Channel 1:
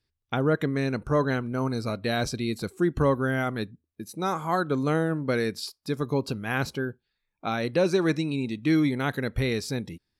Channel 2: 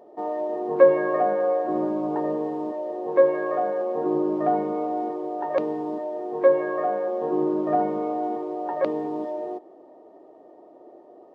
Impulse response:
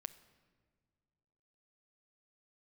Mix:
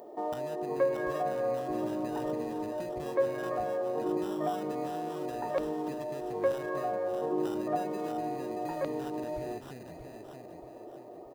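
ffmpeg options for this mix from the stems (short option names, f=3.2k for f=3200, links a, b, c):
-filter_complex "[0:a]acompressor=threshold=-34dB:ratio=6,acrusher=samples=20:mix=1:aa=0.000001,volume=-9dB,asplit=3[a][b][c];[b]volume=-5.5dB[d];[1:a]aemphasis=mode=production:type=50fm,acompressor=threshold=-45dB:ratio=1.5,volume=2dB[e];[c]apad=whole_len=500357[f];[e][f]sidechaincompress=threshold=-43dB:ratio=8:attack=16:release=285[g];[d]aecho=0:1:629|1258|1887|2516|3145|3774:1|0.41|0.168|0.0689|0.0283|0.0116[h];[a][g][h]amix=inputs=3:normalize=0"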